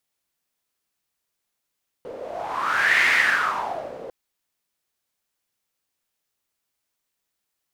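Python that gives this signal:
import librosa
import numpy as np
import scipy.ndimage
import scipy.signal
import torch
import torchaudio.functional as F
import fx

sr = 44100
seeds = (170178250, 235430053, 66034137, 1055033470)

y = fx.wind(sr, seeds[0], length_s=2.05, low_hz=490.0, high_hz=2000.0, q=6.4, gusts=1, swing_db=17.5)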